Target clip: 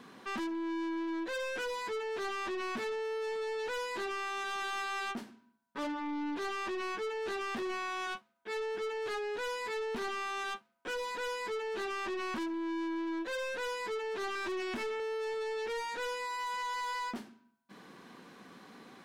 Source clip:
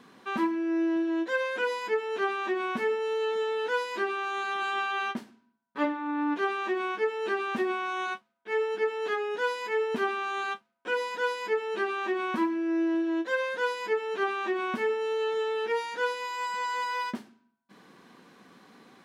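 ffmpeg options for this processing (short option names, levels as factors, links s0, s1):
-filter_complex "[0:a]asettb=1/sr,asplit=3[s0][s1][s2];[s0]atrim=end=14.354[s3];[s1]atrim=start=14.35:end=15,asetpts=PTS-STARTPTS,afade=t=in:d=0.004:c=qsin,afade=t=out:st=0.646:d=0.004:c=qsin,aecho=1:1:3.1:0.64,atrim=end_sample=28665[s4];[s2]atrim=start=14.996[s5];[s3][s4]acrossfade=d=0.004:c1=hsin:c2=qsin[s6];[s6][s5]acrossfade=d=0.004:c1=qsin:c2=hsin,aeval=exprs='(tanh(63.1*val(0)+0.1)-tanh(0.1))/63.1':c=same,volume=1.19"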